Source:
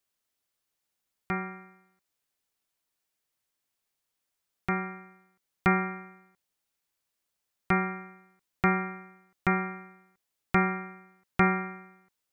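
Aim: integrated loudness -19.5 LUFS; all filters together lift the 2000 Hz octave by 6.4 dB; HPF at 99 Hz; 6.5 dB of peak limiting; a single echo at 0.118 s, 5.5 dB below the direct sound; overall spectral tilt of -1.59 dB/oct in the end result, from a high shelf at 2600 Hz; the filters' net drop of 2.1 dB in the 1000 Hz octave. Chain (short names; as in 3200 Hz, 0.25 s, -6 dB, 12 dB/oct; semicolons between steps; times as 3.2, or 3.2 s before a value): HPF 99 Hz; bell 1000 Hz -8.5 dB; bell 2000 Hz +7.5 dB; high shelf 2600 Hz +4 dB; limiter -14.5 dBFS; echo 0.118 s -5.5 dB; gain +9 dB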